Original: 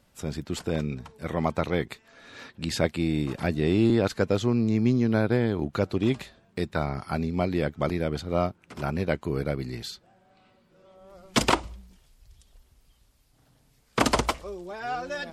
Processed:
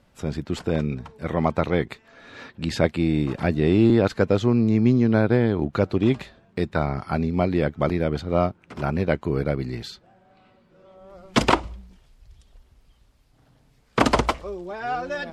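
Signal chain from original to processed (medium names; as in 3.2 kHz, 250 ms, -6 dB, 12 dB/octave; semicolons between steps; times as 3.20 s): low-pass 2.9 kHz 6 dB/octave; trim +4.5 dB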